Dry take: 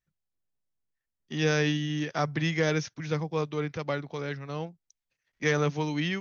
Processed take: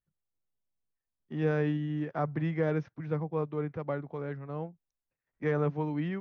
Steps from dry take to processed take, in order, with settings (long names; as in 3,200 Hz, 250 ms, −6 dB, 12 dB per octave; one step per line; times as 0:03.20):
low-pass filter 1,200 Hz 12 dB per octave
level −2 dB